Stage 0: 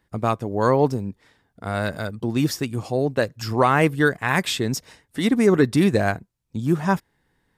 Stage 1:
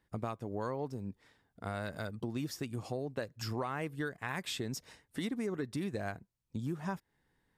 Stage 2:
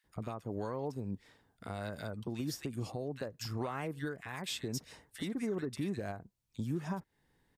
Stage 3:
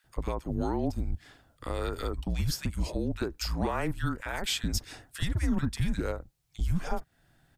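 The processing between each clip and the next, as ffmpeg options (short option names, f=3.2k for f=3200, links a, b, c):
-af "acompressor=threshold=-26dB:ratio=6,volume=-8dB"
-filter_complex "[0:a]alimiter=level_in=6.5dB:limit=-24dB:level=0:latency=1:release=351,volume=-6.5dB,acrossover=split=1500[a][b];[a]adelay=40[c];[c][b]amix=inputs=2:normalize=0,volume=3.5dB"
-af "afreqshift=-170,volume=8.5dB"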